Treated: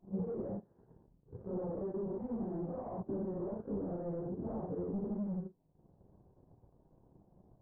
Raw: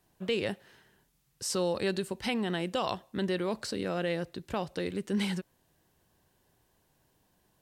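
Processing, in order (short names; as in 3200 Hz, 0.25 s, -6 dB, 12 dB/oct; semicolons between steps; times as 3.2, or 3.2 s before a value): phase scrambler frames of 0.2 s; in parallel at +0.5 dB: limiter -28.5 dBFS, peak gain reduction 11 dB; on the sum: soft clip -33.5 dBFS, distortion -7 dB; compressor 3:1, threshold -39 dBFS, peak gain reduction 3.5 dB; Bessel low-pass 560 Hz, order 6; on a send: reverse echo 96 ms -21 dB; on the sum: transient shaper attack +7 dB, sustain -11 dB; gain +2.5 dB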